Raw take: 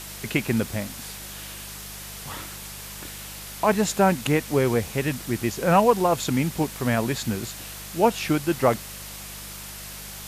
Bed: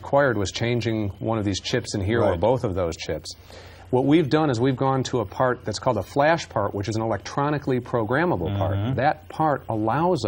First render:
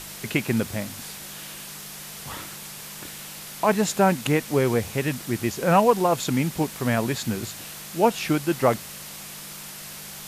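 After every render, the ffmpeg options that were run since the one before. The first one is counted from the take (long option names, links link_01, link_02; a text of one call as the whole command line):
ffmpeg -i in.wav -af "bandreject=frequency=50:width_type=h:width=4,bandreject=frequency=100:width_type=h:width=4" out.wav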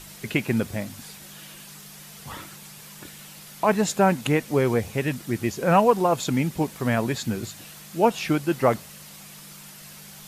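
ffmpeg -i in.wav -af "afftdn=noise_reduction=7:noise_floor=-39" out.wav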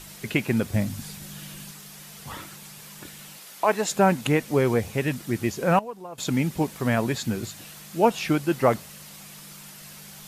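ffmpeg -i in.wav -filter_complex "[0:a]asettb=1/sr,asplit=3[link_01][link_02][link_03];[link_01]atrim=end=0.744[link_04];[link_02]atrim=start=0.74:end=1.71,asetpts=PTS-STARTPTS,afade=type=in:duration=0.004:curve=qsin,afade=type=out:start_time=0.966:duration=0.004:curve=qsin,bass=frequency=250:gain=10,treble=frequency=4000:gain=2[link_05];[link_03]atrim=start=1.706[link_06];[link_04][link_05]acrossfade=duration=0.004:curve1=hsin:curve2=qsin[link_07];[link_07][link_06]acrossfade=duration=0.004:curve1=qsin:curve2=hsin,asettb=1/sr,asplit=3[link_08][link_09][link_10];[link_08]atrim=end=3.374[link_11];[link_09]atrim=start=3.37:end=3.91,asetpts=PTS-STARTPTS,afade=type=in:duration=0.004:curve=qsin,afade=type=out:start_time=0.536:duration=0.004:curve=qsin,highpass=340[link_12];[link_10]atrim=start=3.906[link_13];[link_11][link_12]acrossfade=duration=0.004:curve1=hsin:curve2=qsin[link_14];[link_14][link_13]acrossfade=duration=0.004:curve1=qsin:curve2=hsin,asplit=3[link_15][link_16][link_17];[link_15]atrim=end=5.79,asetpts=PTS-STARTPTS,afade=type=out:start_time=5.44:duration=0.35:curve=log:silence=0.125893[link_18];[link_16]atrim=start=5.79:end=6.18,asetpts=PTS-STARTPTS,volume=-18dB[link_19];[link_17]atrim=start=6.18,asetpts=PTS-STARTPTS,afade=type=in:duration=0.35:curve=log:silence=0.125893[link_20];[link_18][link_19][link_20]concat=n=3:v=0:a=1" out.wav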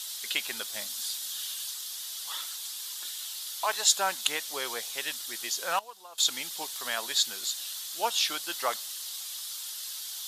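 ffmpeg -i in.wav -af "highpass=1200,highshelf=frequency=2900:width_type=q:width=3:gain=6" out.wav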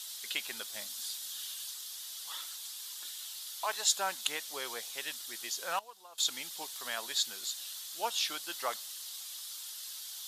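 ffmpeg -i in.wav -af "volume=-5.5dB" out.wav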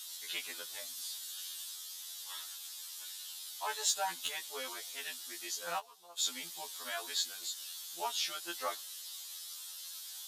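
ffmpeg -i in.wav -af "asoftclip=type=tanh:threshold=-16dB,afftfilt=real='re*2*eq(mod(b,4),0)':imag='im*2*eq(mod(b,4),0)':win_size=2048:overlap=0.75" out.wav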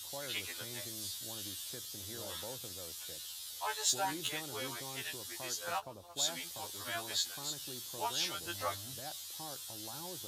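ffmpeg -i in.wav -i bed.wav -filter_complex "[1:a]volume=-27.5dB[link_01];[0:a][link_01]amix=inputs=2:normalize=0" out.wav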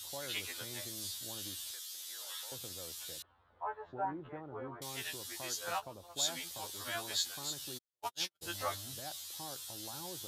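ffmpeg -i in.wav -filter_complex "[0:a]asettb=1/sr,asplit=3[link_01][link_02][link_03];[link_01]atrim=end=1.714[link_04];[link_02]atrim=start=1.71:end=2.52,asetpts=PTS-STARTPTS,afade=type=in:duration=0.004:curve=qsin,afade=type=out:start_time=0.806:duration=0.004:curve=qsin,highpass=1200[link_05];[link_03]atrim=start=2.516[link_06];[link_04][link_05]acrossfade=duration=0.004:curve1=hsin:curve2=qsin[link_07];[link_07][link_06]acrossfade=duration=0.004:curve1=qsin:curve2=hsin,asettb=1/sr,asplit=3[link_08][link_09][link_10];[link_08]atrim=end=3.224[link_11];[link_09]atrim=start=3.22:end=4.82,asetpts=PTS-STARTPTS,afade=type=in:duration=0.004:curve=qsin,afade=type=out:start_time=1.596:duration=0.004:curve=qsin,lowpass=frequency=1300:width=0.5412,lowpass=frequency=1300:width=1.3066[link_12];[link_10]atrim=start=4.816[link_13];[link_11][link_12]acrossfade=duration=0.004:curve1=hsin:curve2=qsin[link_14];[link_14][link_13]acrossfade=duration=0.004:curve1=qsin:curve2=hsin,asplit=3[link_15][link_16][link_17];[link_15]afade=type=out:start_time=7.77:duration=0.02[link_18];[link_16]agate=range=-57dB:threshold=-35dB:ratio=16:release=100:detection=peak,afade=type=in:start_time=7.77:duration=0.02,afade=type=out:start_time=8.41:duration=0.02[link_19];[link_17]afade=type=in:start_time=8.41:duration=0.02[link_20];[link_18][link_19][link_20]amix=inputs=3:normalize=0" out.wav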